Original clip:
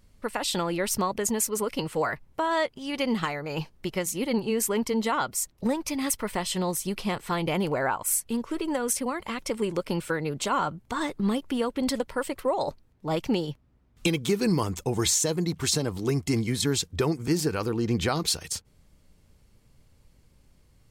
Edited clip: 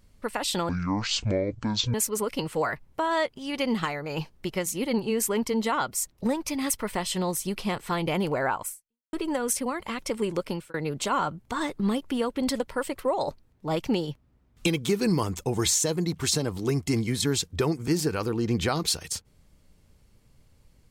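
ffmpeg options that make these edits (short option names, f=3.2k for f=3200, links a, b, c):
-filter_complex "[0:a]asplit=5[a][b][c][d][e];[a]atrim=end=0.694[f];[b]atrim=start=0.69:end=1.34,asetpts=PTS-STARTPTS,asetrate=22932,aresample=44100[g];[c]atrim=start=1.336:end=8.53,asetpts=PTS-STARTPTS,afade=t=out:st=6.714:d=0.48:c=exp[h];[d]atrim=start=8.53:end=10.14,asetpts=PTS-STARTPTS,afade=t=in:d=0.004:c=hsin,afade=t=out:st=1.32:d=0.29[i];[e]atrim=start=10.14,asetpts=PTS-STARTPTS,afade=t=in:d=0.004:c=hsin[j];[f][g]acrossfade=d=0.004:c1=hsin:c2=hsin[k];[h][i][j]concat=n=3:v=0:a=1[l];[k][l]acrossfade=d=0.004:c1=hsin:c2=hsin"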